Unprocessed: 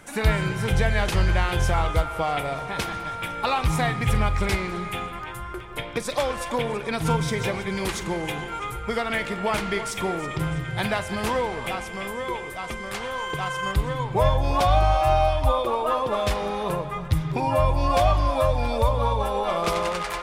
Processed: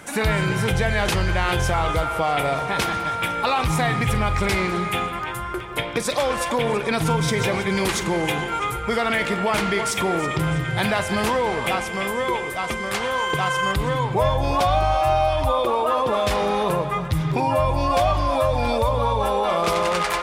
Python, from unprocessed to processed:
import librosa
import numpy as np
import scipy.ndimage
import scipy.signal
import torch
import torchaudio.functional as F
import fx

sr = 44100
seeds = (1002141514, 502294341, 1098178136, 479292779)

p1 = fx.highpass(x, sr, hz=89.0, slope=6)
p2 = fx.over_compress(p1, sr, threshold_db=-28.0, ratio=-1.0)
y = p1 + F.gain(torch.from_numpy(p2), -1.5).numpy()